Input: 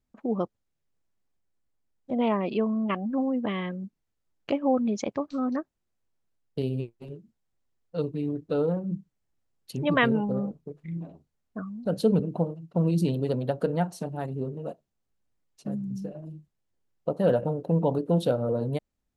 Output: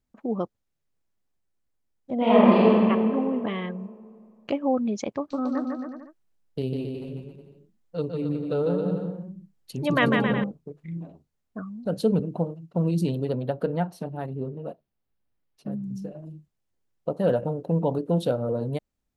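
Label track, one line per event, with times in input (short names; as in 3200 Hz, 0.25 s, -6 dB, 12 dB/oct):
2.160000	2.730000	reverb throw, RT60 2.4 s, DRR -9 dB
5.180000	10.440000	bouncing-ball echo first gap 0.15 s, each gap 0.8×, echoes 5
13.250000	15.830000	bell 7300 Hz -12.5 dB 0.75 oct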